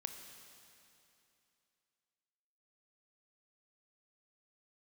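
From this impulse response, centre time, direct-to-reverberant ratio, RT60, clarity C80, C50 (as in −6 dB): 49 ms, 5.5 dB, 2.8 s, 7.0 dB, 6.5 dB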